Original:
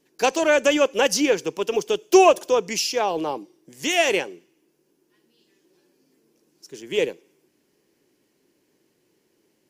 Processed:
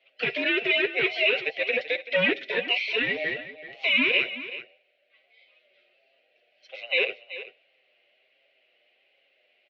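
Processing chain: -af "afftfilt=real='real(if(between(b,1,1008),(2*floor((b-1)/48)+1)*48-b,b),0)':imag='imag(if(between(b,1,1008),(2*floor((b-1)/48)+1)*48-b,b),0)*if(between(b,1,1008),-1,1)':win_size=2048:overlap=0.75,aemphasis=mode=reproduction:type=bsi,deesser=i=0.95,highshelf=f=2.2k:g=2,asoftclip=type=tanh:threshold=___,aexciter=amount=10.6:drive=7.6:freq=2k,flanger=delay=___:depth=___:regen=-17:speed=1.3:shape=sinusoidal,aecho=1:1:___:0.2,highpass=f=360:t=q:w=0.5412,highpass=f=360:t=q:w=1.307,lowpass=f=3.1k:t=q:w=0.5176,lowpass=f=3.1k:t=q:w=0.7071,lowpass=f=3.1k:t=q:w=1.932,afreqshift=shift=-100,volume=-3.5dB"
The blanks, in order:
-13dB, 7.7, 1, 382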